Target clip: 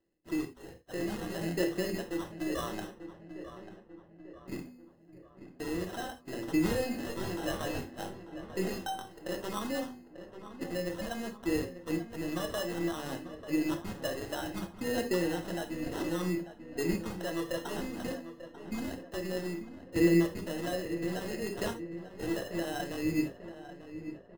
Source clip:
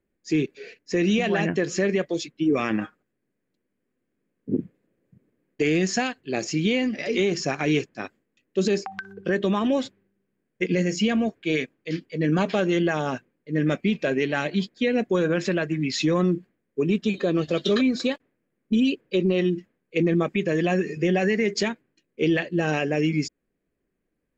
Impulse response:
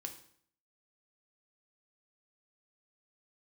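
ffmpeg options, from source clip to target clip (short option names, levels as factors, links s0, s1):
-filter_complex "[0:a]aeval=exprs='if(lt(val(0),0),0.708*val(0),val(0))':c=same,lowpass=f=4900:w=0.5412,lowpass=f=4900:w=1.3066,lowshelf=f=200:g=-9.5,bandreject=f=246.9:t=h:w=4,bandreject=f=493.8:t=h:w=4,alimiter=limit=0.0708:level=0:latency=1:release=196,acrusher=bits=5:mode=log:mix=0:aa=0.000001,aphaser=in_gain=1:out_gain=1:delay=1.7:decay=0.55:speed=0.6:type=sinusoidal,acrusher=samples=19:mix=1:aa=0.000001,asettb=1/sr,asplit=3[s0][s1][s2];[s0]atrim=end=6.674[s3];[s1]atrim=start=6.67:end=9.08,asetpts=PTS-STARTPTS,afade=t=in:d=0.004:c=qsin,afade=t=out:st=2.406:d=0.004:c=qsin,asplit=2[s4][s5];[s5]adelay=21,volume=0.708[s6];[s4][s6]amix=inputs=2:normalize=0,atrim=end_sample=106281[s7];[s2]atrim=start=9.076[s8];[s3][s7]acrossfade=d=0.004:c1=hsin:c2=qsin[s9];[s9][s8]acrossfade=d=0.004:c1=qsin:c2=hsin,asplit=2[s10][s11];[s11]adelay=892,lowpass=f=2200:p=1,volume=0.266,asplit=2[s12][s13];[s13]adelay=892,lowpass=f=2200:p=1,volume=0.53,asplit=2[s14][s15];[s15]adelay=892,lowpass=f=2200:p=1,volume=0.53,asplit=2[s16][s17];[s17]adelay=892,lowpass=f=2200:p=1,volume=0.53,asplit=2[s18][s19];[s19]adelay=892,lowpass=f=2200:p=1,volume=0.53,asplit=2[s20][s21];[s21]adelay=892,lowpass=f=2200:p=1,volume=0.53[s22];[s10][s12][s14][s16][s18][s20][s22]amix=inputs=7:normalize=0[s23];[1:a]atrim=start_sample=2205,atrim=end_sample=3969[s24];[s23][s24]afir=irnorm=-1:irlink=0,volume=0.841"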